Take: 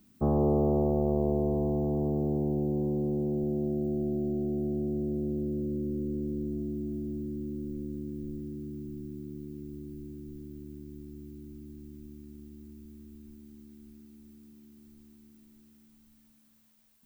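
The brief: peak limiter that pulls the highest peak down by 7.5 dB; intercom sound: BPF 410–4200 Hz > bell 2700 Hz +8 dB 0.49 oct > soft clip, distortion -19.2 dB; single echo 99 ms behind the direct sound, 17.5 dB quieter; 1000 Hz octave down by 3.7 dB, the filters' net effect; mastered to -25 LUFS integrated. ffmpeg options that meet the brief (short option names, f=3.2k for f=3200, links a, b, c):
-af "equalizer=f=1k:t=o:g=-5.5,alimiter=level_in=0.5dB:limit=-24dB:level=0:latency=1,volume=-0.5dB,highpass=410,lowpass=4.2k,equalizer=f=2.7k:t=o:w=0.49:g=8,aecho=1:1:99:0.133,asoftclip=threshold=-32.5dB,volume=17.5dB"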